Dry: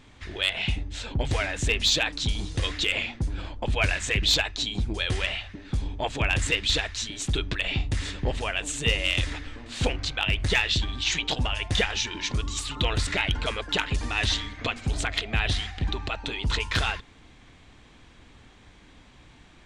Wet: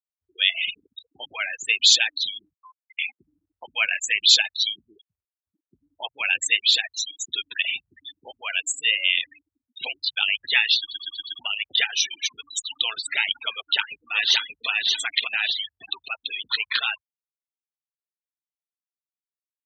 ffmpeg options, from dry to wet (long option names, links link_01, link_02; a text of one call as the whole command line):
ffmpeg -i in.wav -filter_complex "[0:a]asettb=1/sr,asplit=3[link_01][link_02][link_03];[link_01]atrim=end=0.644[link_04];[link_02]atrim=start=0.64:end=1.32,asetpts=PTS-STARTPTS,afade=type=in:duration=0.004:curve=qsin,afade=type=out:start_time=0.676:duration=0.004:curve=qsin,acrusher=bits=6:dc=4:mix=0:aa=0.000001[link_05];[link_03]atrim=start=1.316[link_06];[link_04][link_05]acrossfade=duration=0.004:curve1=hsin:curve2=qsin[link_07];[link_07][link_06]acrossfade=duration=0.004:curve1=qsin:curve2=hsin,asettb=1/sr,asplit=3[link_08][link_09][link_10];[link_08]atrim=end=2.544[link_11];[link_09]atrim=start=2.54:end=2.99,asetpts=PTS-STARTPTS,afade=type=in:duration=0.004:curve=qsin,afade=type=out:start_time=0.446:duration=0.004:curve=qsin,asuperpass=centerf=1200:order=20:qfactor=1[link_12];[link_10]atrim=start=2.986[link_13];[link_11][link_12]acrossfade=duration=0.004:curve1=hsin:curve2=qsin[link_14];[link_14][link_13]acrossfade=duration=0.004:curve1=qsin:curve2=hsin,asettb=1/sr,asplit=3[link_15][link_16][link_17];[link_15]atrim=end=4.974[link_18];[link_16]atrim=start=4.97:end=5.67,asetpts=PTS-STARTPTS,afade=type=in:duration=0.004:curve=qsin,afade=type=out:start_time=0.696:duration=0.004:curve=qsin,acompressor=threshold=-38dB:ratio=6:attack=3.2:release=140:knee=1:detection=peak[link_19];[link_17]atrim=start=5.666[link_20];[link_18][link_19]acrossfade=duration=0.004:curve1=hsin:curve2=qsin[link_21];[link_21][link_20]acrossfade=duration=0.004:curve1=qsin:curve2=hsin,asplit=2[link_22][link_23];[link_23]afade=type=in:start_time=13.54:duration=0.01,afade=type=out:start_time=14.69:duration=0.01,aecho=0:1:580|1160|1740|2320|2900:0.841395|0.336558|0.134623|0.0538493|0.0215397[link_24];[link_22][link_24]amix=inputs=2:normalize=0,asplit=6[link_25][link_26][link_27][link_28][link_29][link_30];[link_25]atrim=end=10.912[link_31];[link_26]atrim=start=10.788:end=10.912[link_32];[link_27]atrim=start=10.788:end=10.912[link_33];[link_28]atrim=start=10.788:end=10.912[link_34];[link_29]atrim=start=10.788:end=10.912[link_35];[link_30]atrim=start=11.388[link_36];[link_31][link_32]acrossfade=duration=0.004:curve1=hsin:curve2=hsin[link_37];[link_37][link_33]acrossfade=duration=0.004:curve1=hsin:curve2=hsin[link_38];[link_38][link_34]acrossfade=duration=0.004:curve1=hsin:curve2=hsin[link_39];[link_39][link_35]acrossfade=duration=0.004:curve1=hsin:curve2=hsin[link_40];[link_40][link_36]acrossfade=duration=0.004:curve1=hsin:curve2=hsin,afftfilt=real='re*gte(hypot(re,im),0.0631)':imag='im*gte(hypot(re,im),0.0631)':win_size=1024:overlap=0.75,highpass=1200,highshelf=frequency=3200:gain=10,volume=1.5dB" out.wav